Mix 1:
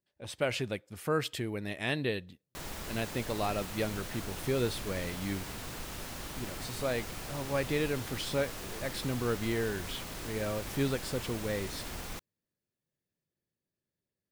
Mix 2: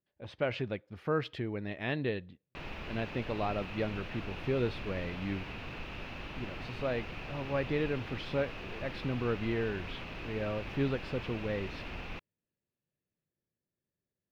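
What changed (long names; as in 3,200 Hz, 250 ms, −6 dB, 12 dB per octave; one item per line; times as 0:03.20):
background: add parametric band 2,600 Hz +12 dB 0.38 octaves
master: add high-frequency loss of the air 290 metres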